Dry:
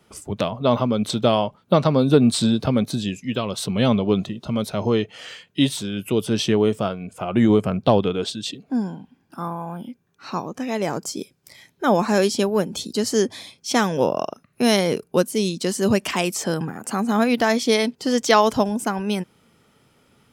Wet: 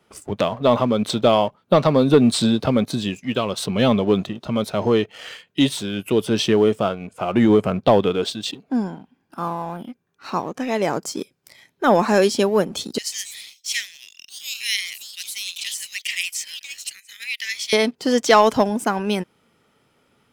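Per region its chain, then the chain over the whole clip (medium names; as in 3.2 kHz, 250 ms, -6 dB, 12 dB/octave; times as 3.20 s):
12.98–17.73 s: Chebyshev high-pass 1.9 kHz, order 6 + ever faster or slower copies 141 ms, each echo +4 st, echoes 2, each echo -6 dB
whole clip: tone controls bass -5 dB, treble -4 dB; waveshaping leveller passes 1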